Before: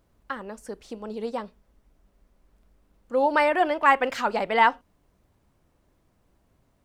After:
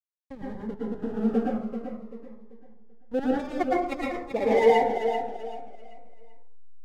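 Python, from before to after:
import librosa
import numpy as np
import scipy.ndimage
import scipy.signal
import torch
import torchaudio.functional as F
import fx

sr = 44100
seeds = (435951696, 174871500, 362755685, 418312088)

p1 = scipy.signal.sosfilt(scipy.signal.cheby1(3, 1.0, 2900.0, 'lowpass', fs=sr, output='sos'), x)
p2 = fx.spec_gate(p1, sr, threshold_db=-25, keep='strong')
p3 = scipy.signal.sosfilt(scipy.signal.ellip(3, 1.0, 40, [800.0, 2100.0], 'bandstop', fs=sr, output='sos'), p2)
p4 = fx.high_shelf(p3, sr, hz=2200.0, db=-7.5)
p5 = fx.power_curve(p4, sr, exponent=3.0, at=(3.19, 4.31))
p6 = fx.filter_sweep_highpass(p5, sr, from_hz=170.0, to_hz=1600.0, start_s=3.91, end_s=5.81, q=1.9)
p7 = fx.backlash(p6, sr, play_db=-30.0)
p8 = p7 + fx.echo_feedback(p7, sr, ms=387, feedback_pct=33, wet_db=-8.5, dry=0)
p9 = fx.rev_plate(p8, sr, seeds[0], rt60_s=0.59, hf_ratio=0.45, predelay_ms=100, drr_db=-5.0)
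p10 = fx.notch_cascade(p9, sr, direction='falling', hz=0.48)
y = F.gain(torch.from_numpy(p10), 1.5).numpy()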